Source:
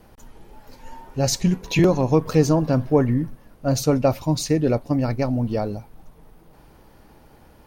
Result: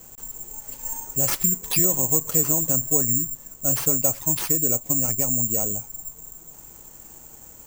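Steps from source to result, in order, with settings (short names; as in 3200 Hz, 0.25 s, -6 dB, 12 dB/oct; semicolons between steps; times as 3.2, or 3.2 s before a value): compressor 2:1, threshold -29 dBFS, peak gain reduction 10 dB; careless resampling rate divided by 6×, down none, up zero stuff; gain -2.5 dB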